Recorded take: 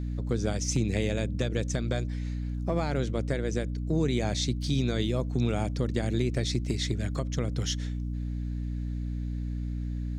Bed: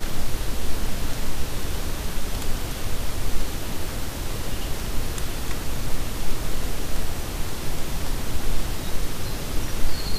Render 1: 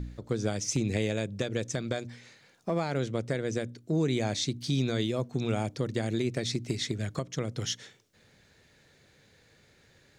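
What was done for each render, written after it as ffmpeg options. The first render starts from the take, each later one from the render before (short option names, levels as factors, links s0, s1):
-af "bandreject=f=60:t=h:w=4,bandreject=f=120:t=h:w=4,bandreject=f=180:t=h:w=4,bandreject=f=240:t=h:w=4,bandreject=f=300:t=h:w=4"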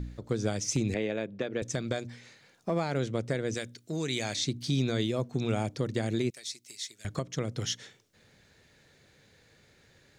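-filter_complex "[0:a]asettb=1/sr,asplit=3[s0][s1][s2];[s0]atrim=end=0.944[s3];[s1]atrim=start=0.94:end=1.62,asetpts=PTS-STARTPTS,afade=t=in:d=0.004:c=qsin,afade=t=out:st=0.676:d=0.004:c=qsin,highpass=210,lowpass=2700[s4];[s2]atrim=start=1.616[s5];[s3][s4]acrossfade=d=0.004:c1=hsin:c2=qsin[s6];[s6][s5]acrossfade=d=0.004:c1=qsin:c2=hsin,asettb=1/sr,asplit=3[s7][s8][s9];[s7]atrim=end=3.544[s10];[s8]atrim=start=3.54:end=4.36,asetpts=PTS-STARTPTS,afade=t=in:d=0.004:c=qsin,afade=t=out:st=0.816:d=0.004:c=qsin,tiltshelf=f=1300:g=-7[s11];[s9]atrim=start=4.356[s12];[s10][s11]acrossfade=d=0.004:c1=hsin:c2=qsin[s13];[s13][s12]acrossfade=d=0.004:c1=qsin:c2=hsin,asettb=1/sr,asplit=3[s14][s15][s16];[s14]atrim=end=6.304[s17];[s15]atrim=start=6.3:end=7.05,asetpts=PTS-STARTPTS,afade=t=in:d=0.004:c=qsin,afade=t=out:st=0.746:d=0.004:c=qsin,aderivative[s18];[s16]atrim=start=7.046[s19];[s17][s18]acrossfade=d=0.004:c1=hsin:c2=qsin[s20];[s20][s19]acrossfade=d=0.004:c1=qsin:c2=hsin"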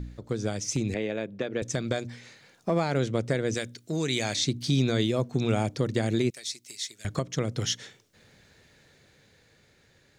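-af "dynaudnorm=f=340:g=9:m=1.58"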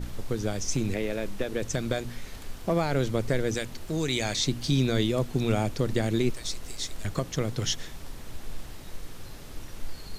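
-filter_complex "[1:a]volume=0.188[s0];[0:a][s0]amix=inputs=2:normalize=0"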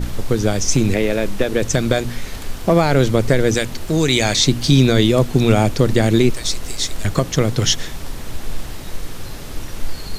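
-af "volume=3.98,alimiter=limit=0.794:level=0:latency=1"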